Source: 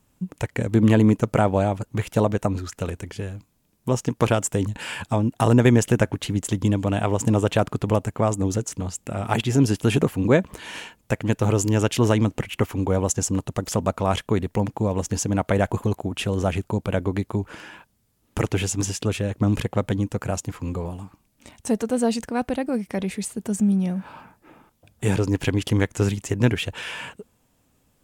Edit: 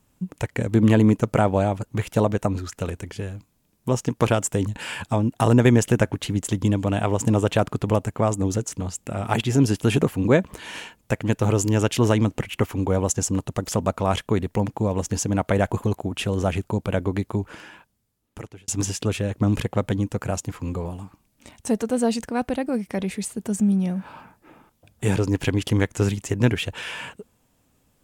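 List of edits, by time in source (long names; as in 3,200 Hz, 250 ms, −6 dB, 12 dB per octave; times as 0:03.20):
0:17.38–0:18.68: fade out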